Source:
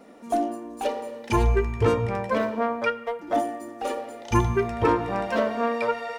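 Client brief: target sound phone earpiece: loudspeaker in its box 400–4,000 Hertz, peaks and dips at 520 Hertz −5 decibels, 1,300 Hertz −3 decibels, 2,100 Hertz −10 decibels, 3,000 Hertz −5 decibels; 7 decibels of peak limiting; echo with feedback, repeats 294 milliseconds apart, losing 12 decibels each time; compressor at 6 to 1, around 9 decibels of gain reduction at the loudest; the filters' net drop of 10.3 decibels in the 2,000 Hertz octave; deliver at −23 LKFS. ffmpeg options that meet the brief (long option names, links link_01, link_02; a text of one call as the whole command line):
ffmpeg -i in.wav -af "equalizer=frequency=2000:width_type=o:gain=-8.5,acompressor=threshold=-26dB:ratio=6,alimiter=limit=-22.5dB:level=0:latency=1,highpass=400,equalizer=frequency=520:width_type=q:width=4:gain=-5,equalizer=frequency=1300:width_type=q:width=4:gain=-3,equalizer=frequency=2100:width_type=q:width=4:gain=-10,equalizer=frequency=3000:width_type=q:width=4:gain=-5,lowpass=frequency=4000:width=0.5412,lowpass=frequency=4000:width=1.3066,aecho=1:1:294|588|882:0.251|0.0628|0.0157,volume=14.5dB" out.wav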